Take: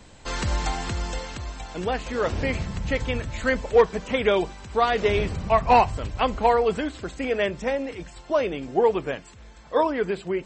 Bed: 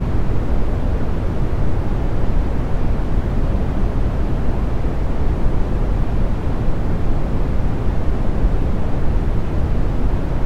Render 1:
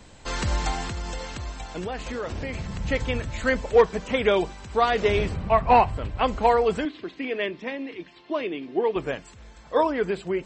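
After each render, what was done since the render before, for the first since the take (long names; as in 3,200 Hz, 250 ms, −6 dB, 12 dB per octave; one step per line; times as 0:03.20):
0:00.85–0:02.79: downward compressor, threshold −27 dBFS
0:05.34–0:06.24: parametric band 6,400 Hz −13.5 dB 0.94 octaves
0:06.85–0:08.96: loudspeaker in its box 260–4,100 Hz, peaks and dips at 320 Hz +5 dB, 540 Hz −10 dB, 800 Hz −8 dB, 1,400 Hz −9 dB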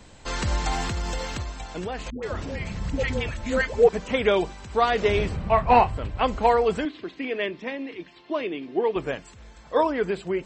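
0:00.71–0:01.43: leveller curve on the samples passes 1
0:02.10–0:03.89: all-pass dispersion highs, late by 128 ms, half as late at 540 Hz
0:05.31–0:05.88: double-tracking delay 29 ms −10.5 dB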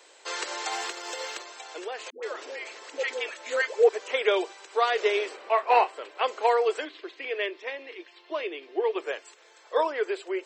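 Butterworth high-pass 370 Hz 48 dB per octave
parametric band 750 Hz −4 dB 1.5 octaves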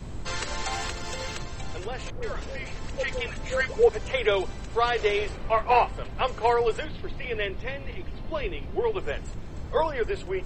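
mix in bed −18.5 dB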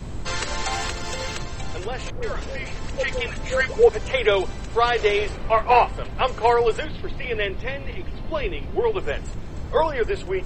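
level +4.5 dB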